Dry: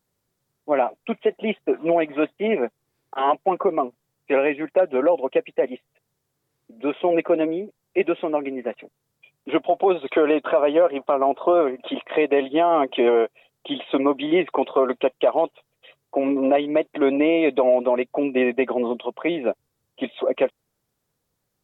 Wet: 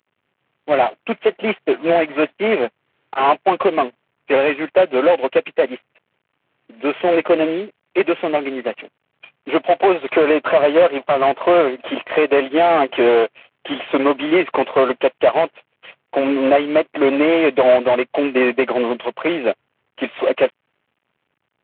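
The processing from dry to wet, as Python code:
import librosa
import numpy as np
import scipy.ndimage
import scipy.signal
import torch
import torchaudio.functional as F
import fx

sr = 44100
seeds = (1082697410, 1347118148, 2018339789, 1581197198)

y = fx.cvsd(x, sr, bps=16000)
y = scipy.signal.sosfilt(scipy.signal.butter(2, 88.0, 'highpass', fs=sr, output='sos'), y)
y = fx.tilt_eq(y, sr, slope=2.0)
y = y * librosa.db_to_amplitude(7.5)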